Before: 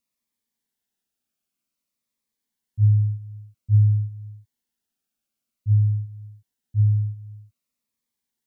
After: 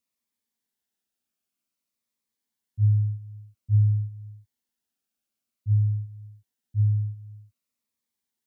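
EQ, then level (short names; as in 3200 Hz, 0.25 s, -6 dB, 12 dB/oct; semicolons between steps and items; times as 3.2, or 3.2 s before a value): HPF 44 Hz; bell 140 Hz -4.5 dB 0.54 oct; -2.0 dB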